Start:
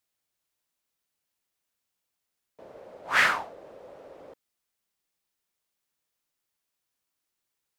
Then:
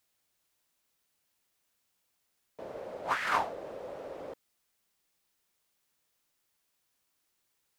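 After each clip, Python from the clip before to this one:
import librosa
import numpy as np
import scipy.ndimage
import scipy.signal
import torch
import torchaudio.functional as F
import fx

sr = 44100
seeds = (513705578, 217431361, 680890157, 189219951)

y = fx.over_compress(x, sr, threshold_db=-30.0, ratio=-1.0)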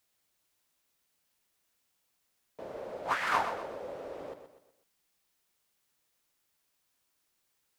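y = fx.echo_feedback(x, sr, ms=124, feedback_pct=40, wet_db=-9.5)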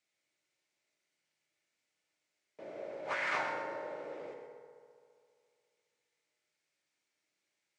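y = fx.cabinet(x, sr, low_hz=130.0, low_slope=12, high_hz=7900.0, hz=(210.0, 370.0, 1000.0, 2200.0), db=(-4, 4, -6, 9))
y = fx.rev_fdn(y, sr, rt60_s=2.3, lf_ratio=0.85, hf_ratio=0.45, size_ms=10.0, drr_db=1.0)
y = F.gain(torch.from_numpy(y), -6.5).numpy()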